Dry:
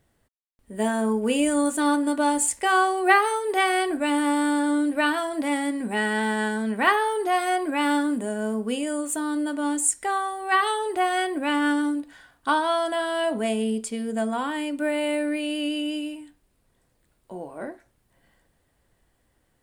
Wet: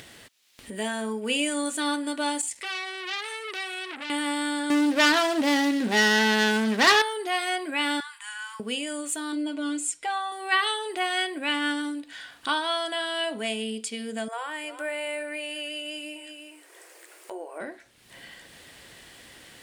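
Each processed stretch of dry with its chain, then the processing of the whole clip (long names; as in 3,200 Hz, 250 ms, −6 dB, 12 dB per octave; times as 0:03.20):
0:02.41–0:04.10: downward compressor 2.5 to 1, threshold −28 dBFS + saturating transformer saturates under 3,200 Hz
0:04.70–0:07.02: running median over 15 samples + parametric band 2,300 Hz −5 dB 0.26 octaves + leveller curve on the samples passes 3
0:08.00–0:08.60: Butterworth high-pass 890 Hz 96 dB per octave + high-shelf EQ 6,600 Hz −9.5 dB
0:09.32–0:10.32: low-pass filter 3,100 Hz 6 dB per octave + parametric band 1,800 Hz −10.5 dB 0.26 octaves + comb filter 6.3 ms, depth 79%
0:14.28–0:17.60: linear-phase brick-wall high-pass 310 Hz + parametric band 3,700 Hz −12 dB 0.94 octaves + single-tap delay 357 ms −15.5 dB
whole clip: meter weighting curve D; upward compression, threshold −23 dBFS; level −6 dB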